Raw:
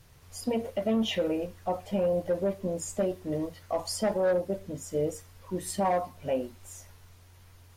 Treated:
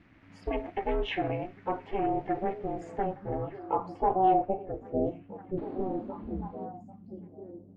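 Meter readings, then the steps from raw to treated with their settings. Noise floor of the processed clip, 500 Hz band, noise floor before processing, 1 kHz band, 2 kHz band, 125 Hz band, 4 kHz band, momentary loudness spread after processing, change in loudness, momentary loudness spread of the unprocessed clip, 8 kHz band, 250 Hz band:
-54 dBFS, -3.5 dB, -55 dBFS, +6.0 dB, -0.5 dB, -1.0 dB, no reading, 17 LU, -1.5 dB, 10 LU, under -30 dB, -2.0 dB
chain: painted sound noise, 5.57–6.66 s, 380–4700 Hz -29 dBFS; ring modulator 190 Hz; low-pass sweep 2.1 kHz -> 200 Hz, 2.70–6.44 s; on a send: repeats whose band climbs or falls 797 ms, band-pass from 170 Hz, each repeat 1.4 oct, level -8 dB

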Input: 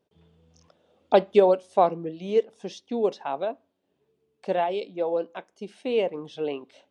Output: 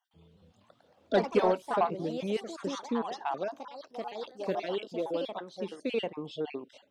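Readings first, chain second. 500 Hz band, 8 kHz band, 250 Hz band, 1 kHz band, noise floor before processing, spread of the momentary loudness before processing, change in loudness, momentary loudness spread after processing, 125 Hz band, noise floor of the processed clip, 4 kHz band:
-8.0 dB, no reading, -2.5 dB, -5.5 dB, -74 dBFS, 18 LU, -7.5 dB, 13 LU, -2.0 dB, -67 dBFS, -1.5 dB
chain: random holes in the spectrogram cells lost 33%; dynamic bell 540 Hz, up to -8 dB, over -34 dBFS, Q 1.5; saturation -16 dBFS, distortion -18 dB; ever faster or slower copies 215 ms, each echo +3 st, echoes 3, each echo -6 dB

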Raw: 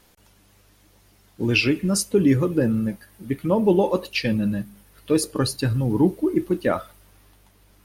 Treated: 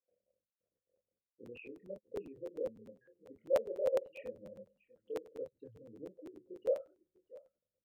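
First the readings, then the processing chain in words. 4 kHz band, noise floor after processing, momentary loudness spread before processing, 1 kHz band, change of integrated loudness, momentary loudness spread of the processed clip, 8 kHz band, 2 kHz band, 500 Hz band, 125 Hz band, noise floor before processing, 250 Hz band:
under -30 dB, under -85 dBFS, 10 LU, -22.5 dB, -17.5 dB, 23 LU, under -30 dB, -29.0 dB, -13.0 dB, -38.0 dB, -57 dBFS, -32.0 dB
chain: resonances exaggerated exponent 3; gate with hold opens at -51 dBFS; high-order bell 690 Hz +8.5 dB 1.2 oct; compression 2:1, threshold -23 dBFS, peak gain reduction 8 dB; chorus voices 4, 0.39 Hz, delay 26 ms, depth 1.2 ms; vowel filter e; distance through air 390 m; comb of notches 880 Hz; on a send: delay 648 ms -21.5 dB; on the sum: resampled via 8 kHz; crackling interface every 0.10 s, samples 512, repeat; trim -5 dB

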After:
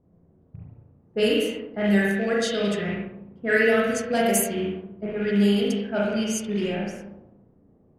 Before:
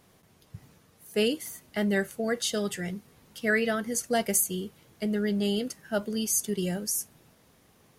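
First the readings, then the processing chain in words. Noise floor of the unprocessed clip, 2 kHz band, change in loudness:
-62 dBFS, +6.0 dB, +5.0 dB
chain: rattle on loud lows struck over -35 dBFS, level -31 dBFS; spring tank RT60 1.1 s, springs 35/59 ms, chirp 55 ms, DRR -4.5 dB; level-controlled noise filter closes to 390 Hz, open at -17.5 dBFS

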